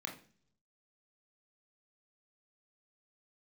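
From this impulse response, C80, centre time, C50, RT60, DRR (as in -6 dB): 15.5 dB, 19 ms, 10.0 dB, 0.45 s, 0.5 dB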